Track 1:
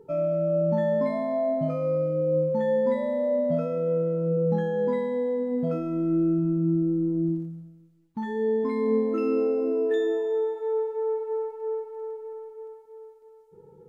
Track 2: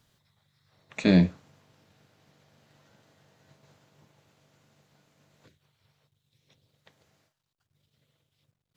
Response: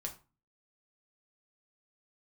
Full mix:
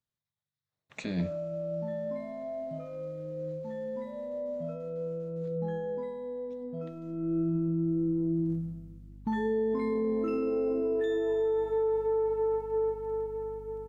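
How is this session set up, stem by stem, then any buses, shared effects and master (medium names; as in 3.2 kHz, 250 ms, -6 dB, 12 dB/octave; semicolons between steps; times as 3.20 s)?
+2.0 dB, 1.10 s, send -20 dB, hum 50 Hz, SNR 24 dB; auto duck -20 dB, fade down 0.75 s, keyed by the second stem
-5.0 dB, 0.00 s, no send, gate with hold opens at -54 dBFS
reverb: on, RT60 0.35 s, pre-delay 6 ms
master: peak limiter -23 dBFS, peak gain reduction 11.5 dB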